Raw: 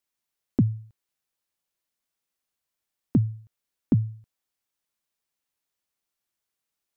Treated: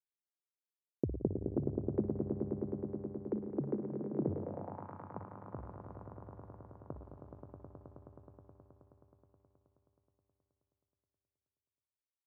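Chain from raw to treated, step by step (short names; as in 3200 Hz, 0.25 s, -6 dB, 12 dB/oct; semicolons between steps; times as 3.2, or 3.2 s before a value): expander -38 dBFS; band shelf 720 Hz +12.5 dB; limiter -14.5 dBFS, peak gain reduction 9.5 dB; wide varispeed 0.568×; echoes that change speed 0.557 s, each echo +7 st, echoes 3; swelling echo 0.106 s, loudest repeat 5, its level -8 dB; spring tank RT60 2.4 s, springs 58 ms, chirp 55 ms, DRR 7.5 dB; band-pass sweep 380 Hz -> 1100 Hz, 4.29–4.9; gain +4 dB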